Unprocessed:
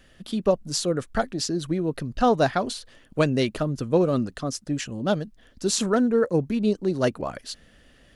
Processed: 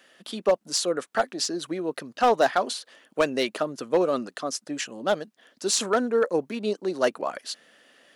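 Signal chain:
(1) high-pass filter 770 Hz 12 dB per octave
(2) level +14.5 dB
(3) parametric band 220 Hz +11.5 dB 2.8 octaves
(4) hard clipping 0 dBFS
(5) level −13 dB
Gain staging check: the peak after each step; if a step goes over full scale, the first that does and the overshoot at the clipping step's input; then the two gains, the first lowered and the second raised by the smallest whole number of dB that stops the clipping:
−8.0, +6.5, +6.5, 0.0, −13.0 dBFS
step 2, 6.5 dB
step 2 +7.5 dB, step 5 −6 dB

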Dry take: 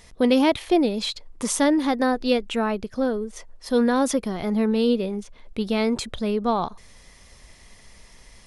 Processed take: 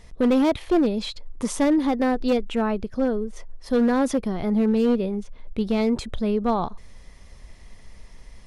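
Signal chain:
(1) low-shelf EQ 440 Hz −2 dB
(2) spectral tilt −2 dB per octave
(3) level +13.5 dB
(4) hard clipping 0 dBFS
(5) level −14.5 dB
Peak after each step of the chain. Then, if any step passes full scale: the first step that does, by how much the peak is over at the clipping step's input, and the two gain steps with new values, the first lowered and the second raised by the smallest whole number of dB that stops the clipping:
−9.0, −6.0, +7.5, 0.0, −14.5 dBFS
step 3, 7.5 dB
step 3 +5.5 dB, step 5 −6.5 dB

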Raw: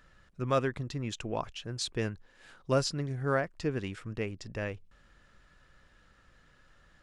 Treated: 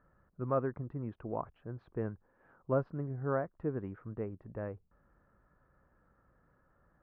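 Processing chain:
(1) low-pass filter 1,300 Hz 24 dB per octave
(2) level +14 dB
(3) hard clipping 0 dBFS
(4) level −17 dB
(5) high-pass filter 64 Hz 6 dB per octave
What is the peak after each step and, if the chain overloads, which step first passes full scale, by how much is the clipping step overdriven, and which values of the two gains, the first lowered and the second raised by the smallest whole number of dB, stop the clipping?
−17.0, −3.0, −3.0, −20.0, −20.0 dBFS
no step passes full scale

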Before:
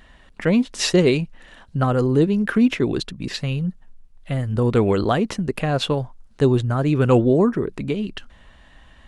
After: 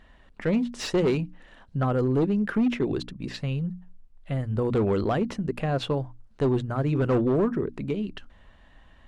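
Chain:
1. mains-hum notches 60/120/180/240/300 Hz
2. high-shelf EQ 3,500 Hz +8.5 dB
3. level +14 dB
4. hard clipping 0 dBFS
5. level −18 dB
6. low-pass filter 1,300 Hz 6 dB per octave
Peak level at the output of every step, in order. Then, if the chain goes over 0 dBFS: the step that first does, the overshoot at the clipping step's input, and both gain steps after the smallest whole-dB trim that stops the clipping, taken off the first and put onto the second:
−5.0, −4.0, +10.0, 0.0, −18.0, −18.0 dBFS
step 3, 10.0 dB
step 3 +4 dB, step 5 −8 dB

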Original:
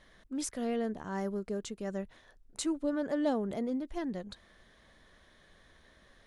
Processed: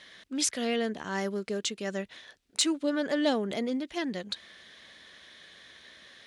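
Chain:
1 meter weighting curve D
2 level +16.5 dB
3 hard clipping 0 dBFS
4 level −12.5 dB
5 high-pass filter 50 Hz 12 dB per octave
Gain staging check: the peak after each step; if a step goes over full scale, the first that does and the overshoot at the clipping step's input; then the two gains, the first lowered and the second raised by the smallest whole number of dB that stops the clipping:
−10.5, +6.0, 0.0, −12.5, −12.5 dBFS
step 2, 6.0 dB
step 2 +10.5 dB, step 4 −6.5 dB

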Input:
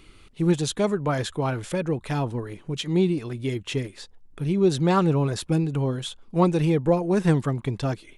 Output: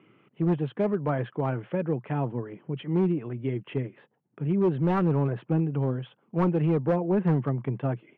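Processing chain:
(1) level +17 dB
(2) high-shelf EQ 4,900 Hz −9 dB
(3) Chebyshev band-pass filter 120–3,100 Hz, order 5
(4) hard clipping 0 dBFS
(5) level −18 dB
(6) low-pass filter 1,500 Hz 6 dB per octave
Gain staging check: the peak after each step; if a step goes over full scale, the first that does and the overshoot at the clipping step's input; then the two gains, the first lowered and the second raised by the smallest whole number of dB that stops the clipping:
+8.5, +8.5, +10.0, 0.0, −18.0, −18.0 dBFS
step 1, 10.0 dB
step 1 +7 dB, step 5 −8 dB

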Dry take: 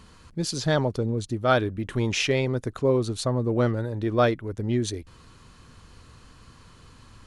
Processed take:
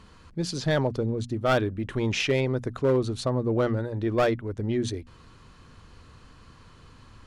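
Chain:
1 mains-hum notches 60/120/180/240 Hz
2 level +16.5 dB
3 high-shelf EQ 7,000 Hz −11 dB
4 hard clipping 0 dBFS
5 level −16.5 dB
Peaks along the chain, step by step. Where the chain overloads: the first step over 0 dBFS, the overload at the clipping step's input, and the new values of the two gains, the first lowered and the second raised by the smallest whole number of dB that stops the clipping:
−8.0, +8.5, +8.0, 0.0, −16.5 dBFS
step 2, 8.0 dB
step 2 +8.5 dB, step 5 −8.5 dB

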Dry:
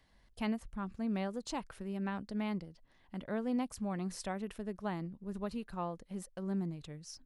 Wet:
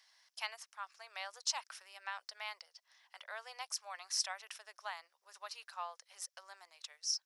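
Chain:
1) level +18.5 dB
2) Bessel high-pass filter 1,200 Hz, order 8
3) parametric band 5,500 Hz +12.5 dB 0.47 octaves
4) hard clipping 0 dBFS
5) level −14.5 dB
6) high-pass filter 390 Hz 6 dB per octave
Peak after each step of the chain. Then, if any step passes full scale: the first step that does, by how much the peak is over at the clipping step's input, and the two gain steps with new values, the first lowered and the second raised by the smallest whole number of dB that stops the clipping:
−5.0, −10.0, −4.0, −4.0, −18.5, −18.5 dBFS
no step passes full scale

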